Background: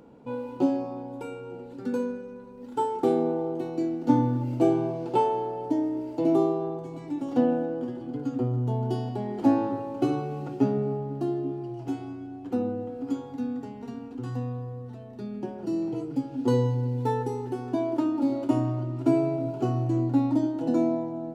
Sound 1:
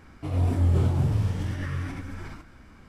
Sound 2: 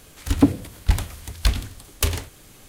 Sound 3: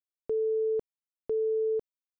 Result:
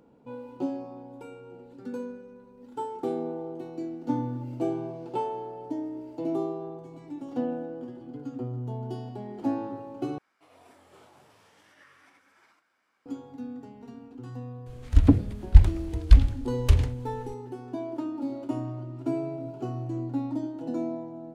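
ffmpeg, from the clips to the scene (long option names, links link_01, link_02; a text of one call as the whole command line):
ffmpeg -i bed.wav -i cue0.wav -i cue1.wav -filter_complex "[0:a]volume=-7dB[link_01];[1:a]highpass=640[link_02];[2:a]aemphasis=mode=reproduction:type=bsi[link_03];[link_01]asplit=2[link_04][link_05];[link_04]atrim=end=10.184[link_06];[link_02]atrim=end=2.88,asetpts=PTS-STARTPTS,volume=-15.5dB[link_07];[link_05]atrim=start=13.056[link_08];[link_03]atrim=end=2.68,asetpts=PTS-STARTPTS,volume=-7.5dB,afade=type=in:duration=0.004:curve=hsin,afade=type=out:start_time=2.676:duration=0.004:curve=hsin,adelay=14660[link_09];[link_06][link_07]acrossfade=duration=0.004:curve1=hsin:curve2=hsin[link_10];[link_10][link_08]acrossfade=duration=0.004:curve1=hsin:curve2=hsin[link_11];[link_11][link_09]amix=inputs=2:normalize=0" out.wav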